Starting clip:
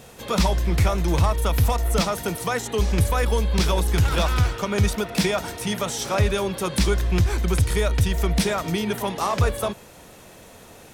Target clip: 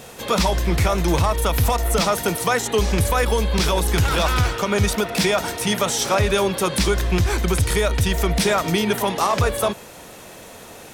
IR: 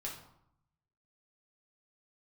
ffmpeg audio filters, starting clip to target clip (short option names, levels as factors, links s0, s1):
-af "lowshelf=f=180:g=-6.5,alimiter=level_in=5.62:limit=0.891:release=50:level=0:latency=1,volume=0.376"